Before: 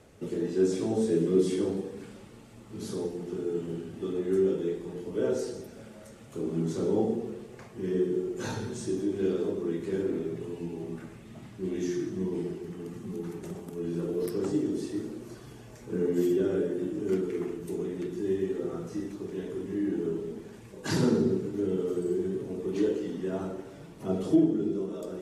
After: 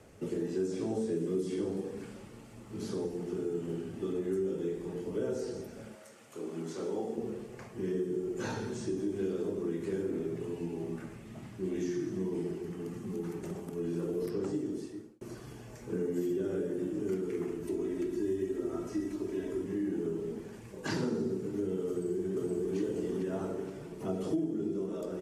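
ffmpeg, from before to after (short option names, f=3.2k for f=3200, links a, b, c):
-filter_complex "[0:a]asettb=1/sr,asplit=3[a][b][c];[a]atrim=end=5.954[d];[b]atrim=start=5.95:end=7.18,asetpts=PTS-STARTPTS,afade=t=in:d=0.004:c=qsin,afade=t=out:st=1.226:d=0.004:c=qsin,highpass=f=710:p=1[e];[c]atrim=start=7.176[f];[d][e]acrossfade=d=0.004:c1=hsin:c2=qsin[g];[g][f]acrossfade=d=0.004:c1=qsin:c2=hsin,asettb=1/sr,asplit=3[h][i][j];[h]atrim=end=17.634[k];[i]atrim=start=17.63:end=19.64,asetpts=PTS-STARTPTS,afade=t=in:d=0.004:c=qsin,afade=t=out:st=2.006:d=0.004:c=qsin,aecho=1:1:3.1:0.65,atrim=end_sample=88641[l];[j]atrim=start=19.636[m];[k][l]acrossfade=d=0.004:c1=hsin:c2=qsin[n];[n][m]acrossfade=d=0.004:c1=qsin:c2=hsin,asplit=2[o][p];[p]afade=t=in:st=21.89:d=0.01,afade=t=out:st=22.75:d=0.01,aecho=0:1:470|940|1410|1880|2350|2820:0.944061|0.424827|0.191172|0.0860275|0.0387124|0.0174206[q];[o][q]amix=inputs=2:normalize=0,asplit=2[r][s];[r]atrim=end=15.21,asetpts=PTS-STARTPTS,afade=t=out:st=14.39:d=0.82[t];[s]atrim=start=15.21,asetpts=PTS-STARTPTS,afade=t=in:d=0.004:c=hsin[u];[t][u]concat=n=2:v=0:a=1,equalizer=f=3.7k:w=4.2:g=-4.5,acrossover=split=200|5800[v][w][x];[v]acompressor=threshold=-42dB:ratio=4[y];[w]acompressor=threshold=-32dB:ratio=4[z];[x]acompressor=threshold=-58dB:ratio=4[aa];[y][z][aa]amix=inputs=3:normalize=0"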